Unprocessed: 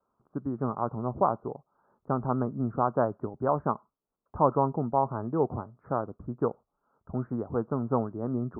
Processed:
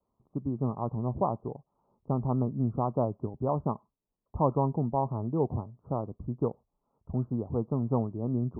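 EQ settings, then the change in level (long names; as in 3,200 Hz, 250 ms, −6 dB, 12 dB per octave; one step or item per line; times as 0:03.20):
Butterworth low-pass 1,100 Hz 48 dB per octave
low-shelf EQ 200 Hz +11.5 dB
−4.5 dB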